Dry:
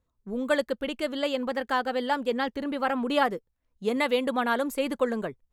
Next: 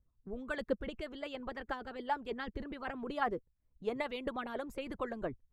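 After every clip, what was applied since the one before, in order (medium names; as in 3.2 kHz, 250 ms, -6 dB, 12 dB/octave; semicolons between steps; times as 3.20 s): harmonic-percussive split harmonic -15 dB; RIAA curve playback; trim -6 dB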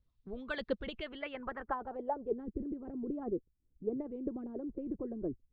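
low-pass sweep 3.9 kHz -> 340 Hz, 0.90–2.48 s; trim -1 dB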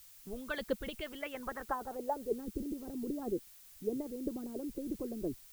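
added noise blue -57 dBFS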